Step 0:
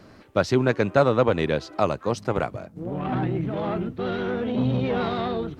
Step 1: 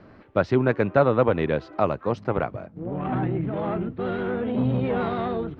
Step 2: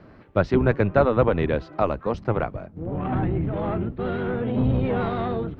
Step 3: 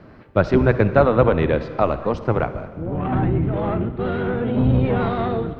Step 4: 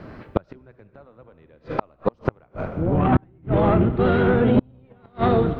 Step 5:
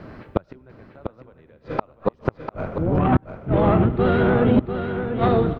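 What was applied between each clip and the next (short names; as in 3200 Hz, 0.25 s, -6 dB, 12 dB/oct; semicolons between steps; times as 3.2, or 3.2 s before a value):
LPF 2400 Hz 12 dB/oct
octaver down 1 oct, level -2 dB
reverb RT60 1.7 s, pre-delay 49 ms, DRR 12 dB; gain +3.5 dB
flipped gate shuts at -11 dBFS, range -38 dB; gain +5 dB
echo 0.695 s -8 dB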